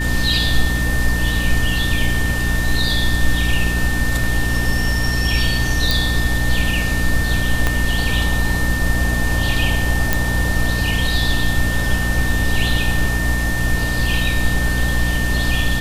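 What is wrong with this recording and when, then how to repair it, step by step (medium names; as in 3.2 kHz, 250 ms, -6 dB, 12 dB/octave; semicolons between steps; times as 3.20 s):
hum 60 Hz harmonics 5 -21 dBFS
whine 1.8 kHz -23 dBFS
5.91 s: pop
7.67 s: pop -3 dBFS
10.13 s: pop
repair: de-click; band-stop 1.8 kHz, Q 30; de-hum 60 Hz, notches 5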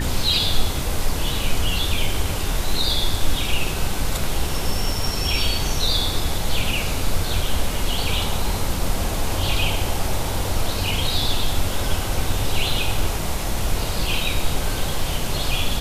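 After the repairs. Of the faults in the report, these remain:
7.67 s: pop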